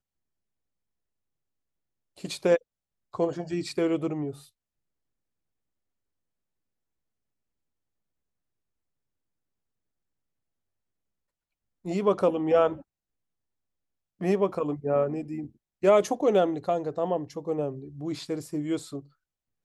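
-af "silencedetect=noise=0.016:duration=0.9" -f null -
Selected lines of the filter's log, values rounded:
silence_start: 0.00
silence_end: 2.24 | silence_duration: 2.24
silence_start: 4.32
silence_end: 11.86 | silence_duration: 7.54
silence_start: 12.76
silence_end: 14.21 | silence_duration: 1.45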